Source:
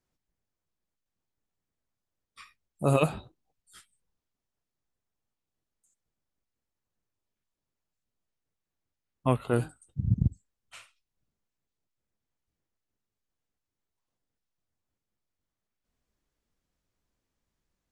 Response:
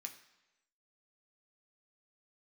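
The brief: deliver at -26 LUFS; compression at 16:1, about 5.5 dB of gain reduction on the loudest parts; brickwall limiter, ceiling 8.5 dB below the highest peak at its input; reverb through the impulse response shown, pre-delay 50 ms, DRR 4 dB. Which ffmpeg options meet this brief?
-filter_complex "[0:a]acompressor=threshold=-24dB:ratio=16,alimiter=limit=-23dB:level=0:latency=1,asplit=2[a][b];[1:a]atrim=start_sample=2205,adelay=50[c];[b][c]afir=irnorm=-1:irlink=0,volume=0.5dB[d];[a][d]amix=inputs=2:normalize=0,volume=12dB"

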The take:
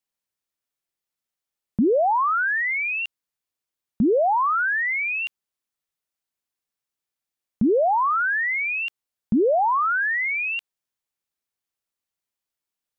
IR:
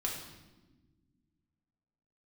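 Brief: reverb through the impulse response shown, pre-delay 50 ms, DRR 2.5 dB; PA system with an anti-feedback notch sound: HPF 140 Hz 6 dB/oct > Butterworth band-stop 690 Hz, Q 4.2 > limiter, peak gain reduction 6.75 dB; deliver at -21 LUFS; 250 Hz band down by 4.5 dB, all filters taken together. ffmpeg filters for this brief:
-filter_complex "[0:a]equalizer=f=250:t=o:g=-4.5,asplit=2[a][b];[1:a]atrim=start_sample=2205,adelay=50[c];[b][c]afir=irnorm=-1:irlink=0,volume=-5.5dB[d];[a][d]amix=inputs=2:normalize=0,highpass=f=140:p=1,asuperstop=centerf=690:order=8:qfactor=4.2,volume=2.5dB,alimiter=limit=-14dB:level=0:latency=1"

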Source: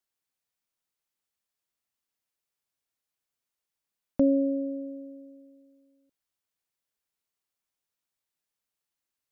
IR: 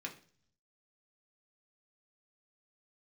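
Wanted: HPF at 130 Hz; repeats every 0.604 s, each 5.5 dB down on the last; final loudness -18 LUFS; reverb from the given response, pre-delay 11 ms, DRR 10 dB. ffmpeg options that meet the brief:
-filter_complex "[0:a]highpass=130,aecho=1:1:604|1208|1812|2416|3020|3624|4228:0.531|0.281|0.149|0.079|0.0419|0.0222|0.0118,asplit=2[a][b];[1:a]atrim=start_sample=2205,adelay=11[c];[b][c]afir=irnorm=-1:irlink=0,volume=-9.5dB[d];[a][d]amix=inputs=2:normalize=0,volume=12.5dB"

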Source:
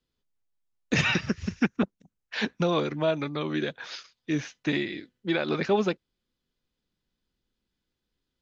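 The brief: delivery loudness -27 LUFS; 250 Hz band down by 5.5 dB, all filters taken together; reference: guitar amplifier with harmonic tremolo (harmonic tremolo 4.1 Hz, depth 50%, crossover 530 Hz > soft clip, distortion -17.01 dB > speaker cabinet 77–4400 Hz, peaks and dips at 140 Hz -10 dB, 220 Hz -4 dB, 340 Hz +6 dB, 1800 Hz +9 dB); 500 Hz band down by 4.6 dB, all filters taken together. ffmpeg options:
-filter_complex "[0:a]equalizer=f=250:t=o:g=-7,equalizer=f=500:t=o:g=-6,acrossover=split=530[a][b];[a]aeval=exprs='val(0)*(1-0.5/2+0.5/2*cos(2*PI*4.1*n/s))':c=same[c];[b]aeval=exprs='val(0)*(1-0.5/2-0.5/2*cos(2*PI*4.1*n/s))':c=same[d];[c][d]amix=inputs=2:normalize=0,asoftclip=threshold=-22.5dB,highpass=77,equalizer=f=140:t=q:w=4:g=-10,equalizer=f=220:t=q:w=4:g=-4,equalizer=f=340:t=q:w=4:g=6,equalizer=f=1.8k:t=q:w=4:g=9,lowpass=f=4.4k:w=0.5412,lowpass=f=4.4k:w=1.3066,volume=6dB"

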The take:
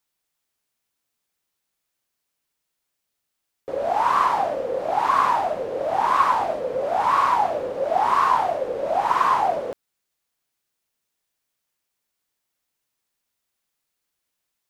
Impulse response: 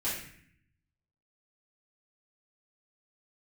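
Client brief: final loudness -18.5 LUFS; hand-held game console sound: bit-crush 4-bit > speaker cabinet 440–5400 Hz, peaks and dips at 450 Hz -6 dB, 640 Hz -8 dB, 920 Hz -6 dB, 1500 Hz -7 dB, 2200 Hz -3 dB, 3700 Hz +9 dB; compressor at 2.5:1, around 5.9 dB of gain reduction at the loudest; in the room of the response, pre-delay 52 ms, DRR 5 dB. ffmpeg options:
-filter_complex "[0:a]acompressor=threshold=-23dB:ratio=2.5,asplit=2[a][b];[1:a]atrim=start_sample=2205,adelay=52[c];[b][c]afir=irnorm=-1:irlink=0,volume=-11dB[d];[a][d]amix=inputs=2:normalize=0,acrusher=bits=3:mix=0:aa=0.000001,highpass=440,equalizer=f=450:t=q:w=4:g=-6,equalizer=f=640:t=q:w=4:g=-8,equalizer=f=920:t=q:w=4:g=-6,equalizer=f=1.5k:t=q:w=4:g=-7,equalizer=f=2.2k:t=q:w=4:g=-3,equalizer=f=3.7k:t=q:w=4:g=9,lowpass=f=5.4k:w=0.5412,lowpass=f=5.4k:w=1.3066,volume=7dB"

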